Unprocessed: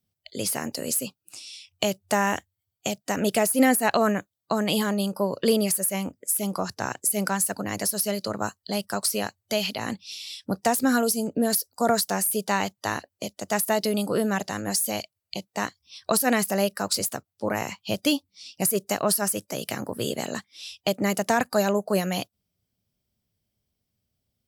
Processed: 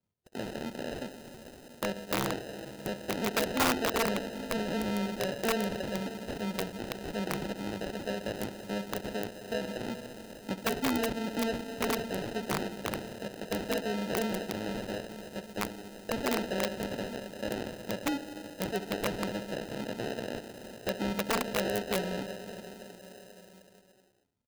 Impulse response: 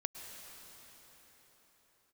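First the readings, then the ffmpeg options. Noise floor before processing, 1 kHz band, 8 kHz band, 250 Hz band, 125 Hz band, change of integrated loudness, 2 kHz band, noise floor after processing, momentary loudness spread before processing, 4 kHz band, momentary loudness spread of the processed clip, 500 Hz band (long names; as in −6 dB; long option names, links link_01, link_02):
−83 dBFS, −8.5 dB, −15.5 dB, −7.5 dB, −5.5 dB, −8.5 dB, −6.5 dB, −55 dBFS, 11 LU, −7.0 dB, 12 LU, −7.0 dB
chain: -filter_complex "[0:a]asuperstop=centerf=4000:order=4:qfactor=1.2,asplit=2[link_01][link_02];[link_02]acompressor=threshold=-31dB:ratio=8,volume=-3dB[link_03];[link_01][link_03]amix=inputs=2:normalize=0,asplit=2[link_04][link_05];[link_05]adelay=69,lowpass=frequency=1900:poles=1,volume=-13.5dB,asplit=2[link_06][link_07];[link_07]adelay=69,lowpass=frequency=1900:poles=1,volume=0.46,asplit=2[link_08][link_09];[link_09]adelay=69,lowpass=frequency=1900:poles=1,volume=0.46,asplit=2[link_10][link_11];[link_11]adelay=69,lowpass=frequency=1900:poles=1,volume=0.46[link_12];[link_04][link_06][link_08][link_10][link_12]amix=inputs=5:normalize=0,asplit=2[link_13][link_14];[1:a]atrim=start_sample=2205,lowpass=7900[link_15];[link_14][link_15]afir=irnorm=-1:irlink=0,volume=2dB[link_16];[link_13][link_16]amix=inputs=2:normalize=0,acrusher=samples=39:mix=1:aa=0.000001,asoftclip=type=tanh:threshold=-7.5dB,equalizer=frequency=1300:width=0.49:gain=-7,acrossover=split=4500[link_17][link_18];[link_18]acompressor=threshold=-40dB:ratio=4:attack=1:release=60[link_19];[link_17][link_19]amix=inputs=2:normalize=0,aeval=exprs='(mod(3.35*val(0)+1,2)-1)/3.35':channel_layout=same,lowshelf=frequency=240:gain=-10,volume=-8.5dB"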